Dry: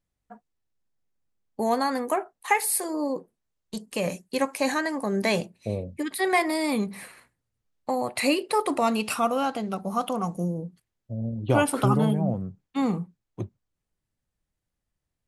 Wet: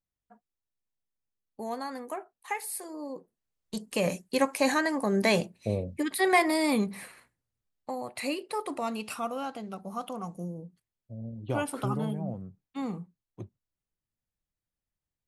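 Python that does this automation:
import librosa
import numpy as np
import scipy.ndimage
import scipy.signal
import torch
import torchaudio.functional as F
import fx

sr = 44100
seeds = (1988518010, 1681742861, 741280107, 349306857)

y = fx.gain(x, sr, db=fx.line((3.06, -11.0), (3.83, 0.0), (6.72, 0.0), (8.01, -9.0)))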